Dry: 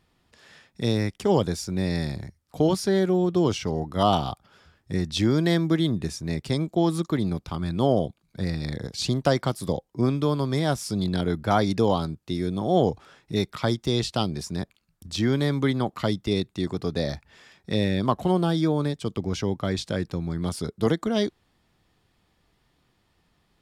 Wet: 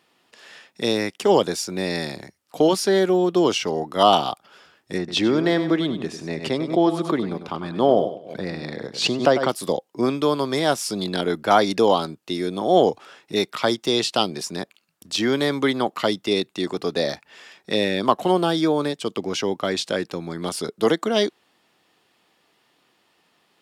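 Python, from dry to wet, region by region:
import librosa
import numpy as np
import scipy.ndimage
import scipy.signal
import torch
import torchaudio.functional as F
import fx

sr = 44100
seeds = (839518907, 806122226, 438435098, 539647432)

y = fx.chain(x, sr, fx.lowpass(hz=1900.0, slope=6),
    fx.echo_feedback(ms=98, feedback_pct=29, wet_db=-10.5),
    fx.pre_swell(db_per_s=110.0), at=(4.98, 9.49))
y = scipy.signal.sosfilt(scipy.signal.butter(2, 320.0, 'highpass', fs=sr, output='sos'), y)
y = fx.peak_eq(y, sr, hz=2800.0, db=4.5, octaves=0.25)
y = F.gain(torch.from_numpy(y), 6.5).numpy()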